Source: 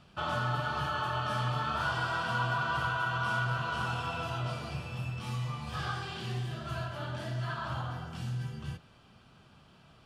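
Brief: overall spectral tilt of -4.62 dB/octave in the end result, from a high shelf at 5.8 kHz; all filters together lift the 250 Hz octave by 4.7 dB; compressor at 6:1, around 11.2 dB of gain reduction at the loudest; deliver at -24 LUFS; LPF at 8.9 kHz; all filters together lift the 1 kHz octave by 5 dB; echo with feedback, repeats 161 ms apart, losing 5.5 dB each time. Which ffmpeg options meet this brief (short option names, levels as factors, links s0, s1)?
-af "lowpass=8900,equalizer=f=250:t=o:g=7,equalizer=f=1000:t=o:g=6,highshelf=f=5800:g=-5.5,acompressor=threshold=0.0158:ratio=6,aecho=1:1:161|322|483|644|805|966|1127:0.531|0.281|0.149|0.079|0.0419|0.0222|0.0118,volume=4.73"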